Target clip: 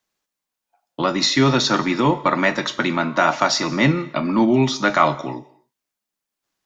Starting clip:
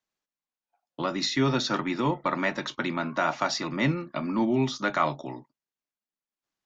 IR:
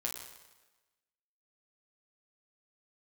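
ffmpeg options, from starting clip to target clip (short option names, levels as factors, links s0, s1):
-filter_complex "[0:a]asplit=2[s0][s1];[s1]bass=f=250:g=-4,treble=f=4000:g=7[s2];[1:a]atrim=start_sample=2205,afade=t=out:st=0.33:d=0.01,atrim=end_sample=14994[s3];[s2][s3]afir=irnorm=-1:irlink=0,volume=0.282[s4];[s0][s4]amix=inputs=2:normalize=0,volume=2.24"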